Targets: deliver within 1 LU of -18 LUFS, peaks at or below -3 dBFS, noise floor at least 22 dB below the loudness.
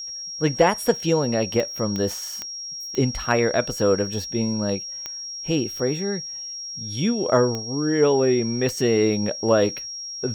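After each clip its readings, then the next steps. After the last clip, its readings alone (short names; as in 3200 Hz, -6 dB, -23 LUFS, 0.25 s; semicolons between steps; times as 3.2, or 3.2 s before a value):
clicks 7; steady tone 5600 Hz; tone level -31 dBFS; loudness -23.0 LUFS; peak -6.5 dBFS; loudness target -18.0 LUFS
-> de-click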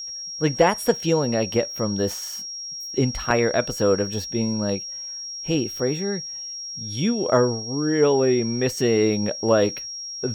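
clicks 0; steady tone 5600 Hz; tone level -31 dBFS
-> notch 5600 Hz, Q 30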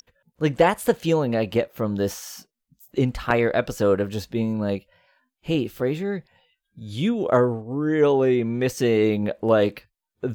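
steady tone none; loudness -23.0 LUFS; peak -4.5 dBFS; loudness target -18.0 LUFS
-> gain +5 dB; limiter -3 dBFS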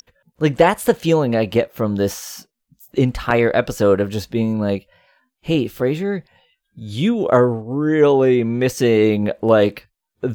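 loudness -18.0 LUFS; peak -3.0 dBFS; noise floor -79 dBFS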